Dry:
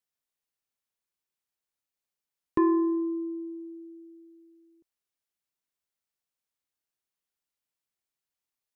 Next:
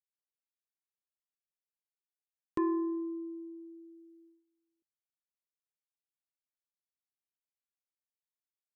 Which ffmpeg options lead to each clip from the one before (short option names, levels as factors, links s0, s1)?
-af "agate=range=0.158:threshold=0.002:ratio=16:detection=peak,volume=0.422"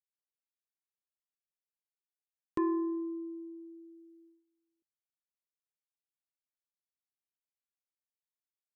-af anull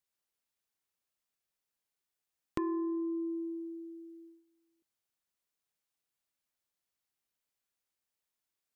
-af "acompressor=threshold=0.01:ratio=5,volume=2.24"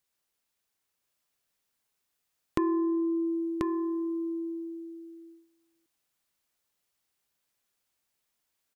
-af "aecho=1:1:1037:0.668,volume=2.11"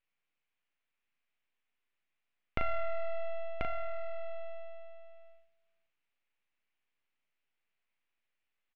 -filter_complex "[0:a]aeval=exprs='abs(val(0))':c=same,lowpass=f=2500:t=q:w=2.5,asplit=2[s0][s1];[s1]adelay=38,volume=0.447[s2];[s0][s2]amix=inputs=2:normalize=0,volume=0.562"